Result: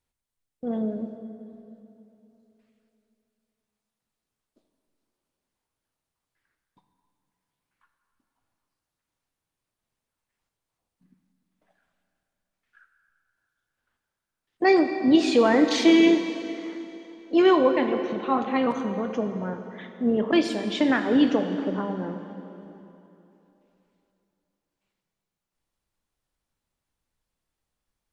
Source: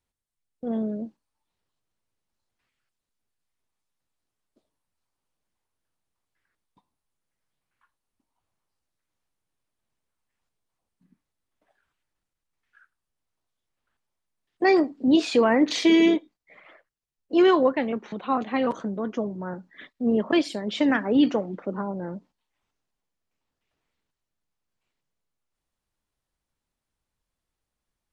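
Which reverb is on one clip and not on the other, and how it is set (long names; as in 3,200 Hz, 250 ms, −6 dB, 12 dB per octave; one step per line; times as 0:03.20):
dense smooth reverb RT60 3.1 s, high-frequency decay 0.85×, DRR 6 dB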